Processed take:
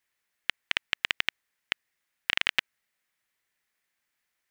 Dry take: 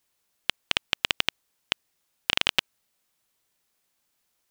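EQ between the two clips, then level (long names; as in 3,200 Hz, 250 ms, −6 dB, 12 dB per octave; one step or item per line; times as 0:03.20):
parametric band 1,900 Hz +13 dB 0.89 octaves
−8.5 dB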